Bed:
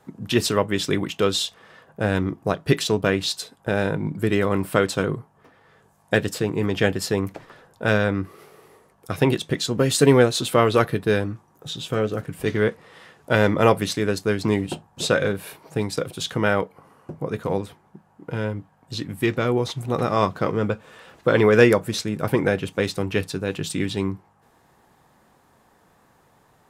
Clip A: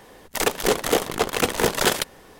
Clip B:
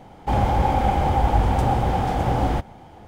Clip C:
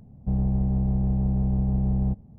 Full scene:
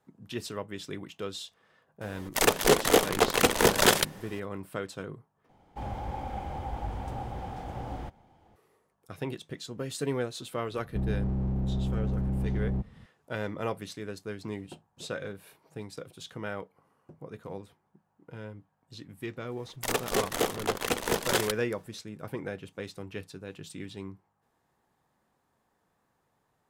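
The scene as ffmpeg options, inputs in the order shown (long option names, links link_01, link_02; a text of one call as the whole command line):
ffmpeg -i bed.wav -i cue0.wav -i cue1.wav -i cue2.wav -filter_complex "[1:a]asplit=2[link_01][link_02];[0:a]volume=-16dB[link_03];[3:a]asoftclip=type=hard:threshold=-22dB[link_04];[link_02]agate=range=-33dB:threshold=-43dB:ratio=3:release=100:detection=peak[link_05];[link_03]asplit=2[link_06][link_07];[link_06]atrim=end=5.494[link_08];[2:a]atrim=end=3.07,asetpts=PTS-STARTPTS,volume=-16.5dB[link_09];[link_07]atrim=start=8.556[link_10];[link_01]atrim=end=2.39,asetpts=PTS-STARTPTS,volume=-1dB,afade=type=in:duration=0.004:curve=hsin,afade=type=out:start_time=2.386:duration=0.004:curve=hsin,adelay=2010[link_11];[link_04]atrim=end=2.38,asetpts=PTS-STARTPTS,volume=-4dB,afade=type=in:duration=0.004:curve=hsin,afade=type=out:start_time=2.376:duration=0.004:curve=hsin,adelay=10680[link_12];[link_05]atrim=end=2.39,asetpts=PTS-STARTPTS,volume=-7.5dB,afade=type=in:duration=0.004:curve=hsin,afade=type=out:start_time=2.386:duration=0.004:curve=hsin,adelay=19480[link_13];[link_08][link_09]acrossfade=duration=0.004:curve1=hsin:curve2=hsin[link_14];[link_14][link_10]acrossfade=duration=0.004:curve1=hsin:curve2=hsin[link_15];[link_15][link_11][link_12][link_13]amix=inputs=4:normalize=0" out.wav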